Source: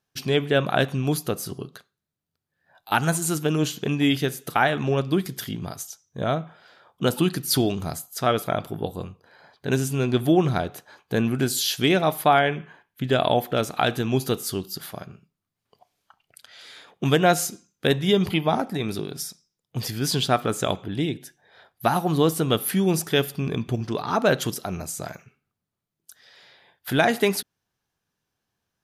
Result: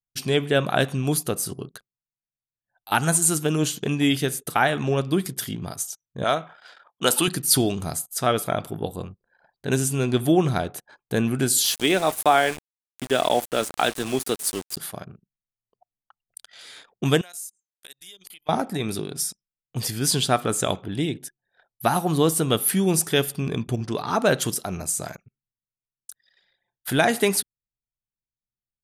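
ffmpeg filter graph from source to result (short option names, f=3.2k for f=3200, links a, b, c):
-filter_complex "[0:a]asettb=1/sr,asplit=3[a][b][c];[a]atrim=end=6.244[d];[b]atrim=start=6.24:end=7.28,asetpts=PTS-STARTPTS,afade=t=in:d=0.004:c=qsin,afade=t=out:st=1.036:d=0.004:c=qsin,highpass=f=920:p=1,acontrast=89[e];[c]atrim=start=7.276[f];[d][e]acrossfade=d=0.004:c1=hsin:c2=qsin[g];[g][f]acrossfade=d=0.004:c1=qsin:c2=hsin,asettb=1/sr,asplit=3[h][i][j];[h]atrim=end=11.644[k];[i]atrim=start=11.64:end=14.77,asetpts=PTS-STARTPTS,afade=t=in:d=0.004:c=qsin,afade=t=out:st=3.126:d=0.004:c=qsin,highpass=240,aeval=exprs='val(0)*gte(abs(val(0)),0.0282)':c=same[l];[j]atrim=start=14.766[m];[k][l]acrossfade=d=0.004:c1=hsin:c2=qsin[n];[n][m]acrossfade=d=0.004:c1=qsin:c2=hsin,asettb=1/sr,asplit=3[o][p][q];[o]atrim=end=17.214[r];[p]atrim=start=17.21:end=18.49,asetpts=PTS-STARTPTS,afade=t=in:d=0.004:c=qsin,afade=t=out:st=1.276:d=0.004:c=qsin,aderivative,acompressor=threshold=-45dB:ratio=3:attack=3.2:release=140:knee=1:detection=peak[s];[q]atrim=start=18.486[t];[r][s]acrossfade=d=0.004:c1=hsin:c2=qsin[u];[u][t]acrossfade=d=0.004:c1=qsin:c2=hsin,equalizer=f=9k:w=1.4:g=10,anlmdn=0.0251"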